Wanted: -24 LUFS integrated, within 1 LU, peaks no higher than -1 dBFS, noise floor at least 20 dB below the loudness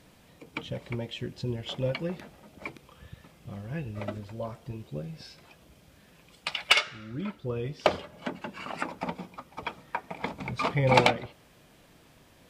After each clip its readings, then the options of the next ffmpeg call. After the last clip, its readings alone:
loudness -31.0 LUFS; peak level -9.0 dBFS; loudness target -24.0 LUFS
-> -af "volume=2.24"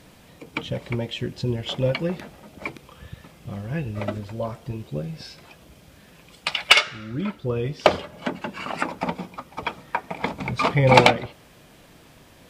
loudness -24.0 LUFS; peak level -2.0 dBFS; noise floor -52 dBFS

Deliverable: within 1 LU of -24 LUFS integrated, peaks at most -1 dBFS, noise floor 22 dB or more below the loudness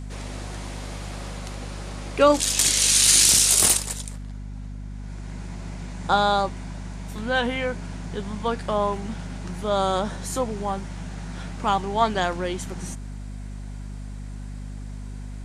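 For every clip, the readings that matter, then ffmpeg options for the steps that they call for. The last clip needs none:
hum 50 Hz; highest harmonic 250 Hz; hum level -32 dBFS; loudness -21.0 LUFS; peak level -4.5 dBFS; loudness target -24.0 LUFS
-> -af "bandreject=f=50:t=h:w=6,bandreject=f=100:t=h:w=6,bandreject=f=150:t=h:w=6,bandreject=f=200:t=h:w=6,bandreject=f=250:t=h:w=6"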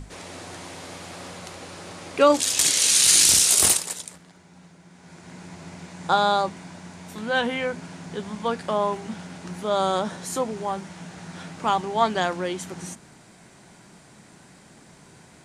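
hum not found; loudness -20.5 LUFS; peak level -5.0 dBFS; loudness target -24.0 LUFS
-> -af "volume=0.668"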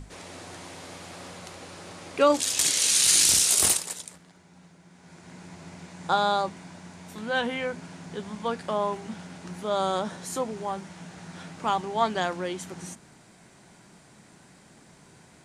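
loudness -24.0 LUFS; peak level -8.5 dBFS; noise floor -55 dBFS

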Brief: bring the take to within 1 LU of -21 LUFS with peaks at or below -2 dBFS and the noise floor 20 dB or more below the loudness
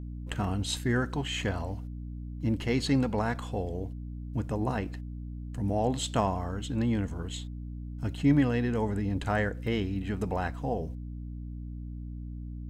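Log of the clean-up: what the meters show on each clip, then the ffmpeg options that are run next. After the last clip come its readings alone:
hum 60 Hz; highest harmonic 300 Hz; hum level -36 dBFS; loudness -31.5 LUFS; peak level -12.5 dBFS; loudness target -21.0 LUFS
-> -af "bandreject=f=60:t=h:w=4,bandreject=f=120:t=h:w=4,bandreject=f=180:t=h:w=4,bandreject=f=240:t=h:w=4,bandreject=f=300:t=h:w=4"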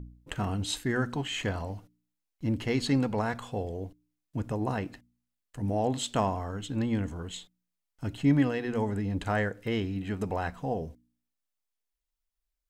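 hum not found; loudness -31.0 LUFS; peak level -13.5 dBFS; loudness target -21.0 LUFS
-> -af "volume=3.16"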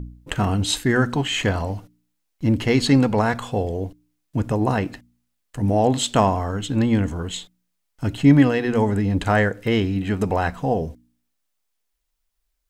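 loudness -21.0 LUFS; peak level -3.5 dBFS; noise floor -75 dBFS

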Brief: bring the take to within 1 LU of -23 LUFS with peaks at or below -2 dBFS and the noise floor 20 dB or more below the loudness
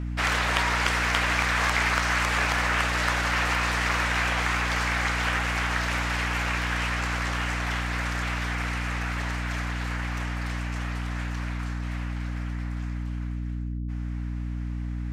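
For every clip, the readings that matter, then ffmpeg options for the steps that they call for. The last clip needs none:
hum 60 Hz; highest harmonic 300 Hz; hum level -28 dBFS; loudness -26.5 LUFS; peak level -7.0 dBFS; loudness target -23.0 LUFS
-> -af "bandreject=f=60:t=h:w=6,bandreject=f=120:t=h:w=6,bandreject=f=180:t=h:w=6,bandreject=f=240:t=h:w=6,bandreject=f=300:t=h:w=6"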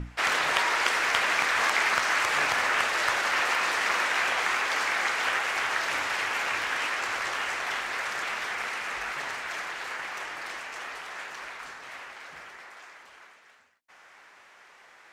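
hum not found; loudness -26.5 LUFS; peak level -7.5 dBFS; loudness target -23.0 LUFS
-> -af "volume=1.5"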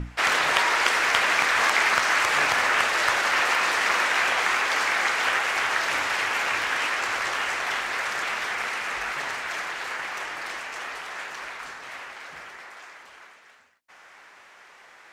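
loudness -23.0 LUFS; peak level -4.0 dBFS; noise floor -51 dBFS

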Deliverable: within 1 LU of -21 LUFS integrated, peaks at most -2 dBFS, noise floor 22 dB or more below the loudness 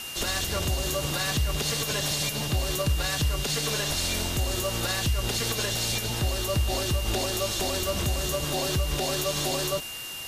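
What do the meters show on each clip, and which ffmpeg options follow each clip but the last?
steady tone 2.8 kHz; tone level -37 dBFS; noise floor -37 dBFS; noise floor target -49 dBFS; loudness -27.0 LUFS; peak level -15.5 dBFS; loudness target -21.0 LUFS
-> -af "bandreject=f=2800:w=30"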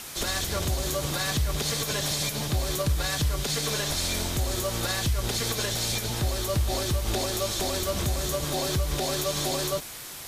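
steady tone not found; noise floor -40 dBFS; noise floor target -49 dBFS
-> -af "afftdn=nr=9:nf=-40"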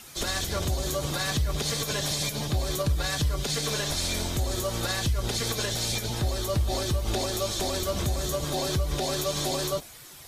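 noise floor -47 dBFS; noise floor target -50 dBFS
-> -af "afftdn=nr=6:nf=-47"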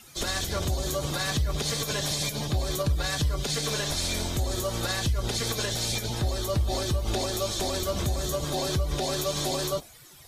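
noise floor -50 dBFS; loudness -28.0 LUFS; peak level -16.5 dBFS; loudness target -21.0 LUFS
-> -af "volume=2.24"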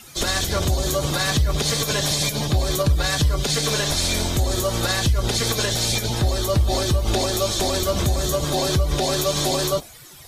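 loudness -21.0 LUFS; peak level -9.5 dBFS; noise floor -43 dBFS

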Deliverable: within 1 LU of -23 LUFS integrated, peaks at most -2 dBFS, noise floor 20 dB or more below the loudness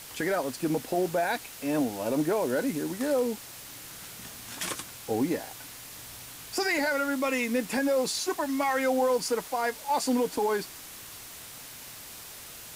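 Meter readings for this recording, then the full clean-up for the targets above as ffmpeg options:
noise floor -45 dBFS; noise floor target -49 dBFS; loudness -28.5 LUFS; peak level -15.5 dBFS; loudness target -23.0 LUFS
-> -af "afftdn=nr=6:nf=-45"
-af "volume=1.88"

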